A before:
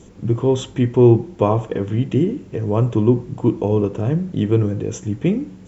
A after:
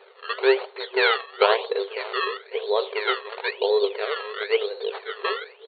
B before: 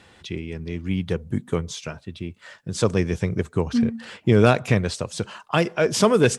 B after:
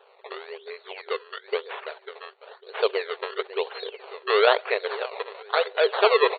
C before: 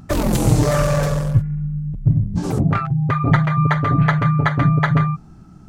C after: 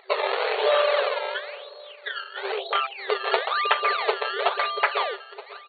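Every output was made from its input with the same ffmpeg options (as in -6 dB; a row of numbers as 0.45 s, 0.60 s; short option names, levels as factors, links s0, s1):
-filter_complex "[0:a]asplit=2[s0][s1];[s1]adelay=549,lowpass=f=1800:p=1,volume=0.168,asplit=2[s2][s3];[s3]adelay=549,lowpass=f=1800:p=1,volume=0.31,asplit=2[s4][s5];[s5]adelay=549,lowpass=f=1800:p=1,volume=0.31[s6];[s0][s2][s4][s6]amix=inputs=4:normalize=0,acrusher=samples=20:mix=1:aa=0.000001:lfo=1:lforange=20:lforate=1,afftfilt=real='re*between(b*sr/4096,380,4500)':imag='im*between(b*sr/4096,380,4500)':win_size=4096:overlap=0.75"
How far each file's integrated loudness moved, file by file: -5.5 LU, -2.5 LU, -6.5 LU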